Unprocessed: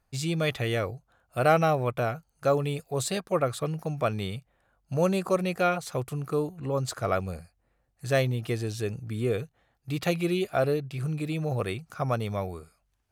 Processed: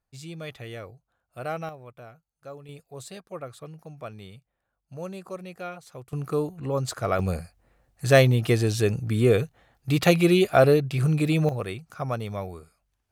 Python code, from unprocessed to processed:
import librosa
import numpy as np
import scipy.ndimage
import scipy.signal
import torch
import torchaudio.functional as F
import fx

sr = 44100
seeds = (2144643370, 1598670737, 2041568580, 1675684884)

y = fx.gain(x, sr, db=fx.steps((0.0, -10.5), (1.69, -17.5), (2.69, -11.5), (6.13, 1.5), (7.19, 8.0), (11.49, -1.5)))